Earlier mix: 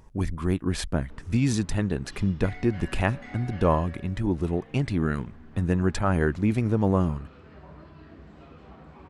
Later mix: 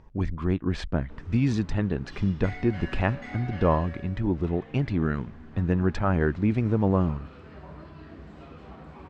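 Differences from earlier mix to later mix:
speech: add high-frequency loss of the air 170 metres
background +3.0 dB

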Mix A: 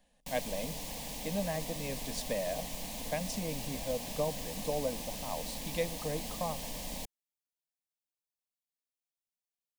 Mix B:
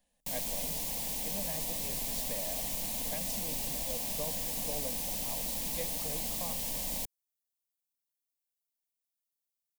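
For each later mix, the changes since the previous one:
speech −8.5 dB
master: add high-shelf EQ 7,400 Hz +11.5 dB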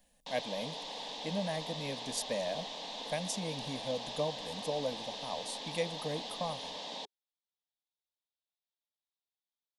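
speech +7.5 dB
background: add loudspeaker in its box 360–4,600 Hz, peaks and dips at 410 Hz +6 dB, 900 Hz +6 dB, 1,400 Hz +4 dB, 2,300 Hz −6 dB, 3,600 Hz +8 dB

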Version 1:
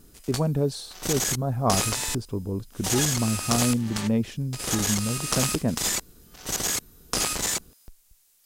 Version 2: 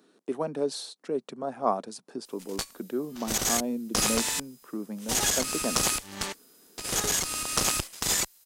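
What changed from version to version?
speech: add Bessel high-pass filter 350 Hz, order 8
background: entry +2.25 s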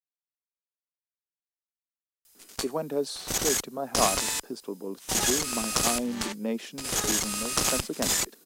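speech: entry +2.35 s

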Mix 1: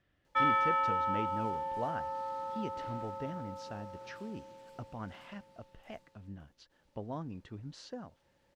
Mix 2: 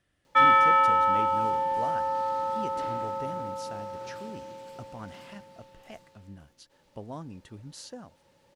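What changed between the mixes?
speech: remove high-frequency loss of the air 150 metres
background +9.5 dB

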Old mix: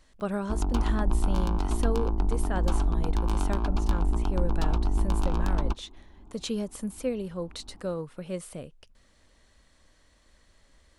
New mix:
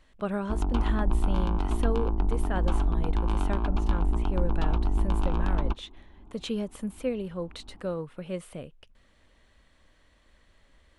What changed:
background: add high-frequency loss of the air 50 metres
master: add high shelf with overshoot 4,000 Hz −6 dB, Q 1.5

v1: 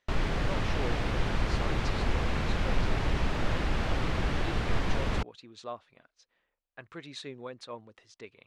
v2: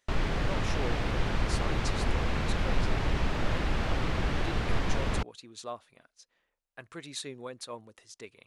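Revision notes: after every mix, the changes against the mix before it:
speech: remove low-pass filter 4,100 Hz 12 dB per octave
reverb: on, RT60 0.50 s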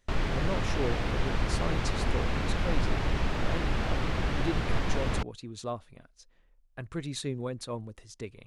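speech: remove high-pass filter 730 Hz 6 dB per octave

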